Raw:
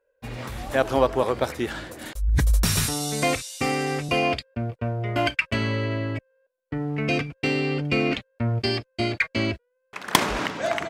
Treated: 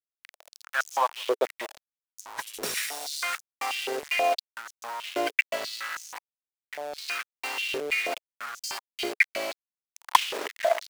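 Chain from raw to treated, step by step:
centre clipping without the shift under −24.5 dBFS
high-pass on a step sequencer 6.2 Hz 430–6,300 Hz
level −7 dB

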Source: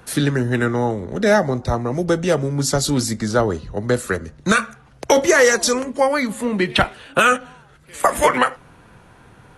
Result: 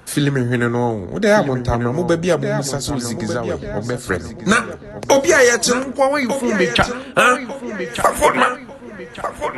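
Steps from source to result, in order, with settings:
0:02.35–0:04.08: downward compressor 6 to 1, threshold −21 dBFS, peak gain reduction 9.5 dB
on a send: feedback echo with a low-pass in the loop 1,196 ms, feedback 40%, low-pass 4,400 Hz, level −9 dB
on the sum: level +1.5 dB

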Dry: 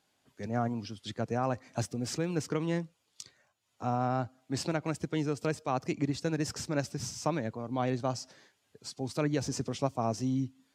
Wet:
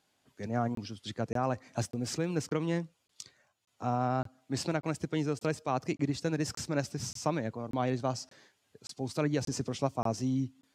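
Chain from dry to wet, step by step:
regular buffer underruns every 0.58 s, samples 1,024, zero, from 0:00.75

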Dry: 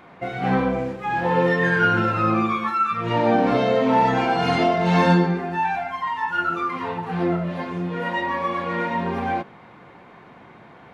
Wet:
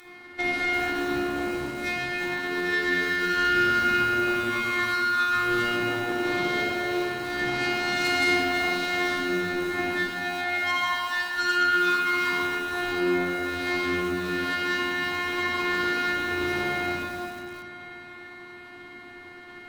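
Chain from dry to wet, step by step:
brickwall limiter −16 dBFS, peak gain reduction 10 dB
phase-vocoder stretch with locked phases 1.8×
downward compressor 4 to 1, threshold −31 dBFS, peak gain reduction 10.5 dB
phases set to zero 355 Hz
low shelf with overshoot 340 Hz +8 dB, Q 1.5
harmonic generator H 7 −23 dB, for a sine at −20.5 dBFS
spectral tilt +3 dB per octave
echo with a time of its own for lows and highs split 590 Hz, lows 196 ms, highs 535 ms, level −14 dB
rectangular room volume 2,500 cubic metres, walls mixed, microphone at 4.2 metres
feedback echo at a low word length 341 ms, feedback 35%, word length 6 bits, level −13 dB
level +4.5 dB

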